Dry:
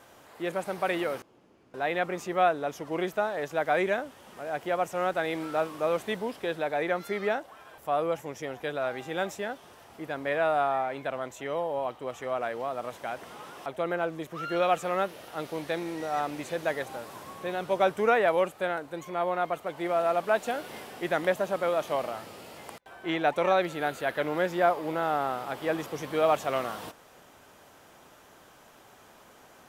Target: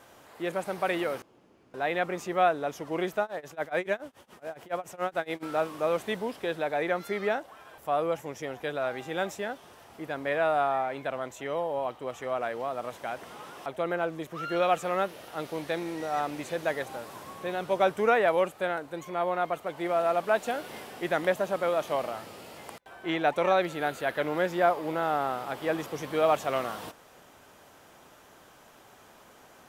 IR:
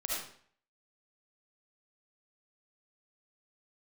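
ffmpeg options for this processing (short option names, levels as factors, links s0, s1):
-filter_complex "[0:a]asettb=1/sr,asplit=3[s0][s1][s2];[s0]atrim=end=3.214[s3];[s1]atrim=start=3.21:end=5.43,asetpts=PTS-STARTPTS,afade=t=in:d=0.004:c=qsin,afade=t=out:st=2.216:d=0.004:c=qsin,tremolo=f=7.1:d=0.95[s4];[s2]atrim=start=5.426[s5];[s3][s4]acrossfade=d=0.004:c1=hsin:c2=qsin[s6];[s6][s5]acrossfade=d=0.004:c1=qsin:c2=hsin"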